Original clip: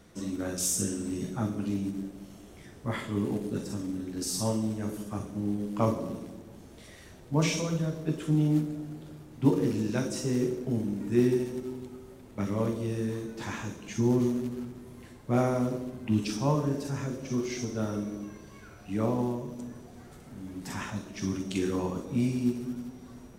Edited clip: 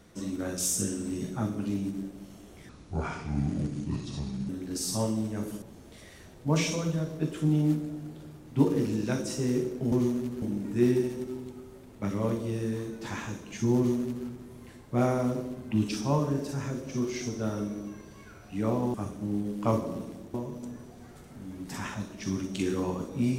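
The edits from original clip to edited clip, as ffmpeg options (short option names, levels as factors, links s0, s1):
-filter_complex "[0:a]asplit=8[s0][s1][s2][s3][s4][s5][s6][s7];[s0]atrim=end=2.694[s8];[s1]atrim=start=2.69:end=3.95,asetpts=PTS-STARTPTS,asetrate=30870,aresample=44100[s9];[s2]atrim=start=3.946:end=5.082[s10];[s3]atrim=start=6.478:end=10.782[s11];[s4]atrim=start=14.118:end=14.622[s12];[s5]atrim=start=10.778:end=19.302[s13];[s6]atrim=start=5.078:end=6.482[s14];[s7]atrim=start=19.298[s15];[s8][s9]acrossfade=d=0.004:c1=hsin:c2=hsin[s16];[s16][s10]acrossfade=d=0.004:c1=hsin:c2=hsin[s17];[s17][s11]acrossfade=d=0.004:c1=hsin:c2=hsin[s18];[s18][s12]acrossfade=d=0.004:c1=hsin:c2=hsin[s19];[s19][s13]acrossfade=d=0.004:c1=hsin:c2=hsin[s20];[s20][s14]acrossfade=d=0.004:c1=hsin:c2=hsin[s21];[s21][s15]acrossfade=d=0.004:c1=hsin:c2=hsin"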